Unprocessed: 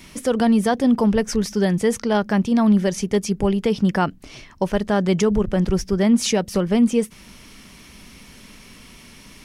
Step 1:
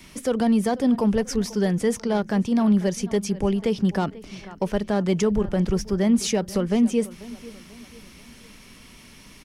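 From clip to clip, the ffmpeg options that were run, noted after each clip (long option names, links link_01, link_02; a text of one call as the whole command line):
ffmpeg -i in.wav -filter_complex "[0:a]asplit=2[link_01][link_02];[link_02]adelay=490,lowpass=frequency=3900:poles=1,volume=-19dB,asplit=2[link_03][link_04];[link_04]adelay=490,lowpass=frequency=3900:poles=1,volume=0.44,asplit=2[link_05][link_06];[link_06]adelay=490,lowpass=frequency=3900:poles=1,volume=0.44[link_07];[link_01][link_03][link_05][link_07]amix=inputs=4:normalize=0,acrossover=split=370|710|4600[link_08][link_09][link_10][link_11];[link_10]asoftclip=type=tanh:threshold=-24.5dB[link_12];[link_08][link_09][link_12][link_11]amix=inputs=4:normalize=0,volume=-3dB" out.wav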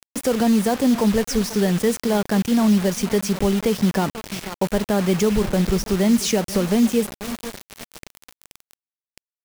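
ffmpeg -i in.wav -filter_complex "[0:a]asplit=2[link_01][link_02];[link_02]acompressor=threshold=-28dB:ratio=10,volume=1dB[link_03];[link_01][link_03]amix=inputs=2:normalize=0,acrusher=bits=4:mix=0:aa=0.000001" out.wav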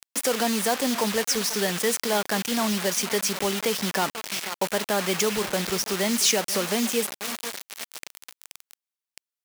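ffmpeg -i in.wav -af "highpass=frequency=1200:poles=1,volume=4dB" out.wav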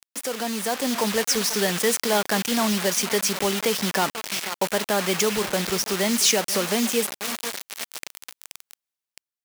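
ffmpeg -i in.wav -af "dynaudnorm=framelen=330:gausssize=5:maxgain=9dB,volume=-5dB" out.wav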